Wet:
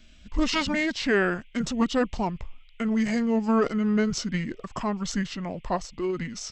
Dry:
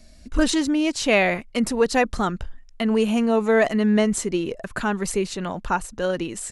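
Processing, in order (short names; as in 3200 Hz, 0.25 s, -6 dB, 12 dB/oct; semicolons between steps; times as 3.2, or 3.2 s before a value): formant shift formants -6 st; band noise 2100–3300 Hz -61 dBFS; gain -4 dB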